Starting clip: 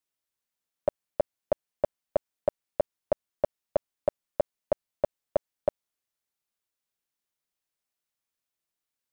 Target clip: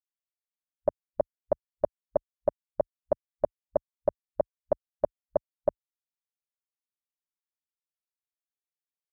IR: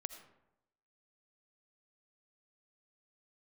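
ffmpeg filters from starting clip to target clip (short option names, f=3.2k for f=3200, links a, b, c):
-af "afwtdn=0.0141"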